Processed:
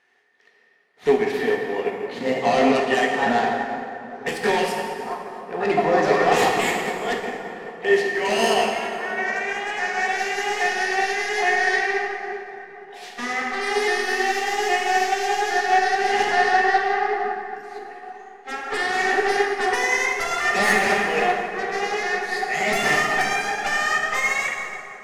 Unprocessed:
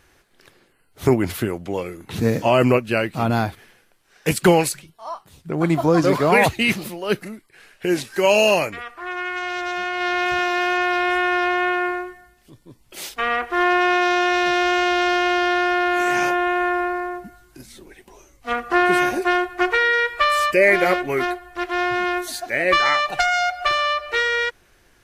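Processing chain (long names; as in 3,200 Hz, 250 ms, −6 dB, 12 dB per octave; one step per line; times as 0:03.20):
pitch shifter swept by a sawtooth +3 semitones, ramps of 816 ms
low-pass filter 2,600 Hz 12 dB per octave
first difference
in parallel at −3 dB: brickwall limiter −28 dBFS, peak gain reduction 9.5 dB
on the sum: sine wavefolder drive 13 dB, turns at −16 dBFS
hollow resonant body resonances 230/420/720/1,800 Hz, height 14 dB, ringing for 25 ms
on a send: delay with a low-pass on its return 778 ms, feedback 75%, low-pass 1,400 Hz, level −15.5 dB
on the sum: dense smooth reverb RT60 3.8 s, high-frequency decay 0.5×, DRR −2 dB
expander for the loud parts 1.5 to 1, over −29 dBFS
level −7.5 dB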